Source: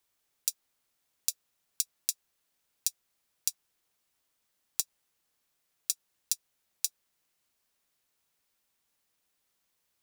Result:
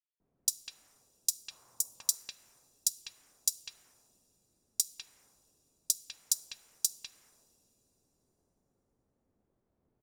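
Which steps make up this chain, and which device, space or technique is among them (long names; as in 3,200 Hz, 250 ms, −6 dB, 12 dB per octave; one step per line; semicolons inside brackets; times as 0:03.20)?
cassette deck with a dynamic noise filter (white noise bed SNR 26 dB; low-pass that shuts in the quiet parts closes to 340 Hz, open at −36 dBFS)
0:01.30–0:01.95: octave-band graphic EQ 125/500/1,000/2,000/4,000 Hz +6/+4/+11/−4/−12 dB
multiband delay without the direct sound highs, lows 200 ms, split 3,600 Hz
coupled-rooms reverb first 0.43 s, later 3.4 s, from −18 dB, DRR 15.5 dB
level +5.5 dB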